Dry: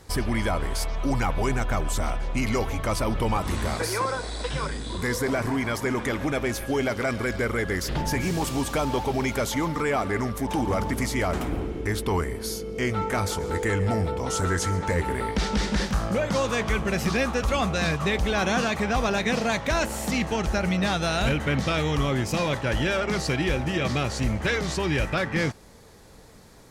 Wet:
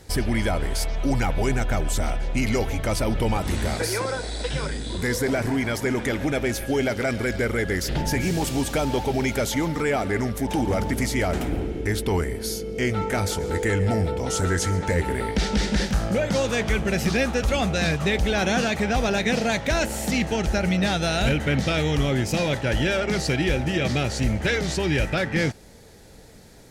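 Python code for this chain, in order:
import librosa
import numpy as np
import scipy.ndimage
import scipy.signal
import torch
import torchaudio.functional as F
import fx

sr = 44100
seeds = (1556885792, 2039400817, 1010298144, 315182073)

y = fx.peak_eq(x, sr, hz=1100.0, db=-10.5, octaves=0.41)
y = F.gain(torch.from_numpy(y), 2.5).numpy()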